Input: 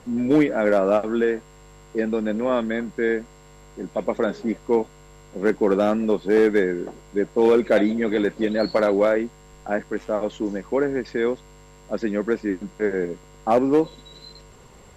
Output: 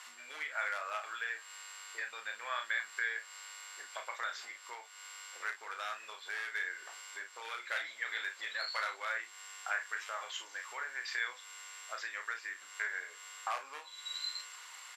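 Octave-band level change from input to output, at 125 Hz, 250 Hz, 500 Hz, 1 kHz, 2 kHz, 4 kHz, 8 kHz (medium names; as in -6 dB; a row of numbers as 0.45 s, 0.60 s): under -40 dB, under -40 dB, -32.5 dB, -12.0 dB, -4.0 dB, -1.5 dB, no reading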